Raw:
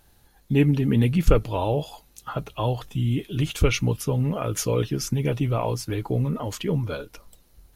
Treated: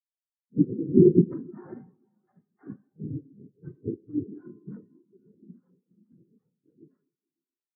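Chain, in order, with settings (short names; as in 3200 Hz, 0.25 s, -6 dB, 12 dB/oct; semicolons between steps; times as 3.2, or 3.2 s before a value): inharmonic rescaling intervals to 90%; bell 850 Hz +7 dB 1.7 oct; notches 50/100/150/200/250/300/350/400/450/500 Hz; 4.77–6.82 compressor 16:1, threshold -26 dBFS, peak gain reduction 8 dB; high shelf 2700 Hz -6.5 dB; noise vocoder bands 3; diffused feedback echo 0.556 s, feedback 44%, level -10 dB; Schroeder reverb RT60 2.4 s, combs from 30 ms, DRR 3 dB; spectral expander 4:1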